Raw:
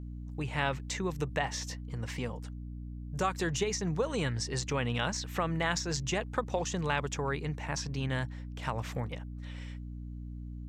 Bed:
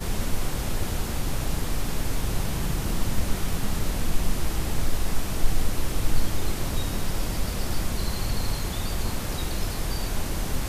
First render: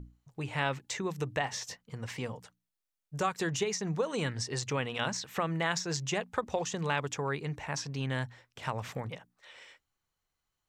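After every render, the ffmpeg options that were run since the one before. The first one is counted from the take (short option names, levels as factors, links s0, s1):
-af "bandreject=f=60:t=h:w=6,bandreject=f=120:t=h:w=6,bandreject=f=180:t=h:w=6,bandreject=f=240:t=h:w=6,bandreject=f=300:t=h:w=6"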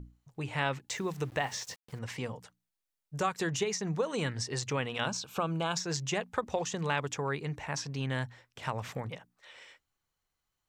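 -filter_complex "[0:a]asettb=1/sr,asplit=3[s0][s1][s2];[s0]atrim=end=0.894[s3];[s1]atrim=start=0.89:end=1.99,asetpts=PTS-STARTPTS,afade=t=in:d=0.004:c=qsin,afade=t=out:st=1.096:d=0.004:c=qsin,aeval=exprs='val(0)*gte(abs(val(0)),0.00335)':c=same[s4];[s2]atrim=start=1.986[s5];[s3][s4]acrossfade=d=0.004:c1=hsin:c2=qsin[s6];[s6][s5]acrossfade=d=0.004:c1=qsin:c2=hsin,asettb=1/sr,asplit=3[s7][s8][s9];[s7]atrim=end=5.084[s10];[s8]atrim=start=5.08:end=5.77,asetpts=PTS-STARTPTS,afade=t=in:d=0.004:c=qsin,afade=t=out:st=0.686:d=0.004:c=qsin,asuperstop=centerf=1900:order=4:qfactor=2.7[s11];[s9]atrim=start=5.766[s12];[s10][s11]acrossfade=d=0.004:c1=hsin:c2=qsin[s13];[s13][s12]acrossfade=d=0.004:c1=qsin:c2=hsin"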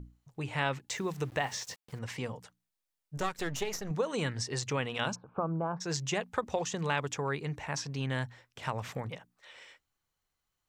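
-filter_complex "[0:a]asettb=1/sr,asplit=3[s0][s1][s2];[s0]atrim=end=3.174[s3];[s1]atrim=start=3.17:end=3.91,asetpts=PTS-STARTPTS,afade=t=in:d=0.004:c=qsin,afade=t=out:st=0.736:d=0.004:c=qsin,aeval=exprs='if(lt(val(0),0),0.251*val(0),val(0))':c=same[s4];[s2]atrim=start=3.906[s5];[s3][s4]acrossfade=d=0.004:c1=hsin:c2=qsin[s6];[s6][s5]acrossfade=d=0.004:c1=qsin:c2=hsin,asplit=3[s7][s8][s9];[s7]afade=t=out:st=5.14:d=0.02[s10];[s8]lowpass=f=1200:w=0.5412,lowpass=f=1200:w=1.3066,afade=t=in:st=5.14:d=0.02,afade=t=out:st=5.8:d=0.02[s11];[s9]afade=t=in:st=5.8:d=0.02[s12];[s10][s11][s12]amix=inputs=3:normalize=0"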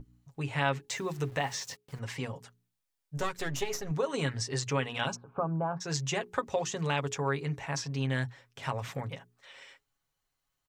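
-af "bandreject=f=60:t=h:w=6,bandreject=f=120:t=h:w=6,bandreject=f=180:t=h:w=6,bandreject=f=240:t=h:w=6,bandreject=f=300:t=h:w=6,bandreject=f=360:t=h:w=6,bandreject=f=420:t=h:w=6,aecho=1:1:7.3:0.51"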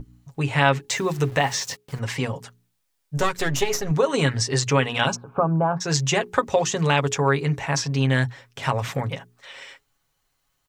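-af "volume=3.35"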